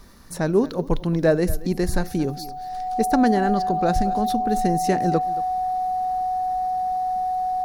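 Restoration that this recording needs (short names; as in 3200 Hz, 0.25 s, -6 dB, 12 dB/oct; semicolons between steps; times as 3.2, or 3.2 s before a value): notch 740 Hz, Q 30; inverse comb 0.226 s -18 dB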